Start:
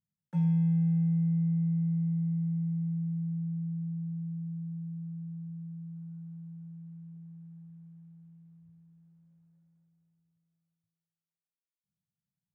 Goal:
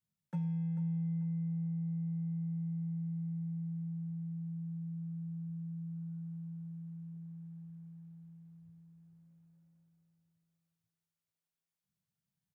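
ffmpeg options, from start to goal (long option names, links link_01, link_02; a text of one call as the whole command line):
ffmpeg -i in.wav -af "adynamicequalizer=threshold=0.01:dfrequency=160:dqfactor=2.4:tfrequency=160:tqfactor=2.4:attack=5:release=100:ratio=0.375:range=2.5:mode=cutabove:tftype=bell,acompressor=threshold=-36dB:ratio=4,aecho=1:1:441|882|1323:0.251|0.0779|0.0241,volume=1dB" out.wav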